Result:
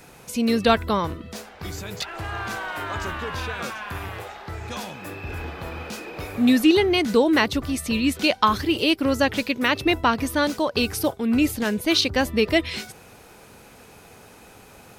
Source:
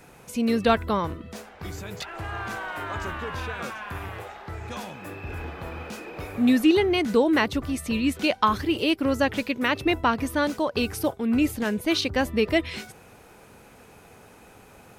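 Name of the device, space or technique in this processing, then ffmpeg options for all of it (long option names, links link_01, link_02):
presence and air boost: -af "equalizer=frequency=4500:width_type=o:width=1.2:gain=4.5,highshelf=frequency=9800:gain=5,volume=2dB"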